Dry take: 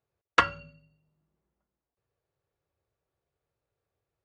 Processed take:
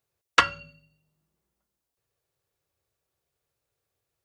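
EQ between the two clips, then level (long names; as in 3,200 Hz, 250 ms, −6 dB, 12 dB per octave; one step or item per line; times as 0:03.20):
high-shelf EQ 2,500 Hz +12 dB
−1.0 dB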